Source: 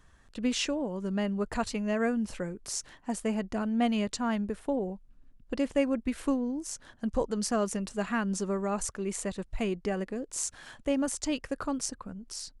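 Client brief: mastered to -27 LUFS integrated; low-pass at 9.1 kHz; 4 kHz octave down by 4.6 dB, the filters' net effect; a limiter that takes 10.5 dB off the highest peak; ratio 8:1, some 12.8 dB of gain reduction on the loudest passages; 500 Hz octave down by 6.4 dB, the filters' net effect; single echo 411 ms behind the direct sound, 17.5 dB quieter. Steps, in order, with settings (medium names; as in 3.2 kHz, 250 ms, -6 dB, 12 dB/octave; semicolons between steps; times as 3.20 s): low-pass 9.1 kHz; peaking EQ 500 Hz -8 dB; peaking EQ 4 kHz -6.5 dB; compression 8:1, threshold -39 dBFS; peak limiter -36 dBFS; delay 411 ms -17.5 dB; trim +18.5 dB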